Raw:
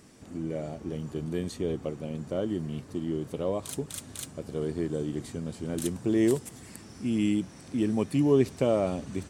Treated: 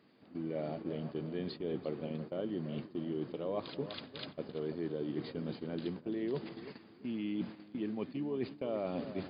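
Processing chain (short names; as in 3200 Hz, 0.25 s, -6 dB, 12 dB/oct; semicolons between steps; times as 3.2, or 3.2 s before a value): reverse; compressor 16:1, threshold -33 dBFS, peak gain reduction 17 dB; reverse; HPF 180 Hz 12 dB/oct; darkening echo 0.34 s, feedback 47%, low-pass 3200 Hz, level -11 dB; gate -44 dBFS, range -10 dB; brick-wall FIR low-pass 5000 Hz; gain +1 dB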